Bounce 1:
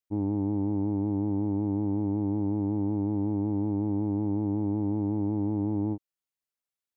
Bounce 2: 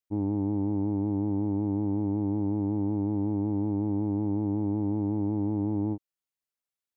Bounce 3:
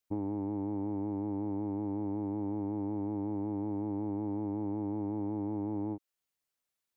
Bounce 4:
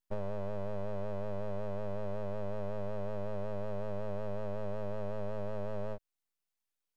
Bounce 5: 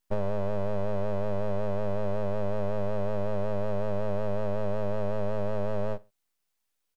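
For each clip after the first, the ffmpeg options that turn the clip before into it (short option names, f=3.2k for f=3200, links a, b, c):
-af anull
-filter_complex "[0:a]acrossover=split=320|1000[a][b][c];[a]acompressor=threshold=-45dB:ratio=4[d];[b]acompressor=threshold=-41dB:ratio=4[e];[c]acompressor=threshold=-58dB:ratio=4[f];[d][e][f]amix=inputs=3:normalize=0,volume=4dB"
-af "aeval=exprs='abs(val(0))':c=same"
-af "aecho=1:1:63|126:0.0708|0.0212,volume=8dB"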